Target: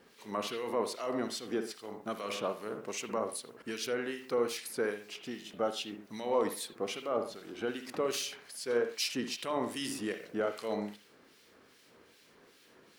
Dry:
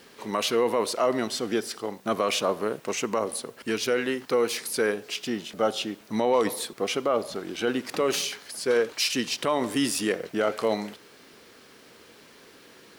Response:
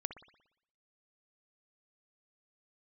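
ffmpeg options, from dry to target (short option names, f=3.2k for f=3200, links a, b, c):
-filter_complex "[1:a]atrim=start_sample=2205,atrim=end_sample=6174[a];[0:a][a]afir=irnorm=-1:irlink=0,acrossover=split=1900[b][c];[b]aeval=exprs='val(0)*(1-0.7/2+0.7/2*cos(2*PI*2.5*n/s))':c=same[d];[c]aeval=exprs='val(0)*(1-0.7/2-0.7/2*cos(2*PI*2.5*n/s))':c=same[e];[d][e]amix=inputs=2:normalize=0,volume=-5dB"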